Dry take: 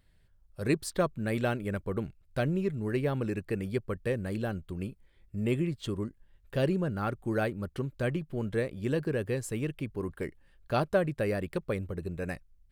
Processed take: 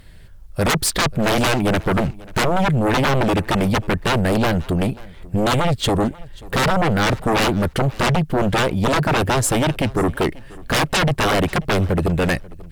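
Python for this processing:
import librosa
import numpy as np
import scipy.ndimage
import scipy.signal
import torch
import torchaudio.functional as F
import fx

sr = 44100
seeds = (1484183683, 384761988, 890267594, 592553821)

y = fx.fold_sine(x, sr, drive_db=18, ceiling_db=-14.0)
y = fx.echo_feedback(y, sr, ms=538, feedback_pct=18, wet_db=-22.0)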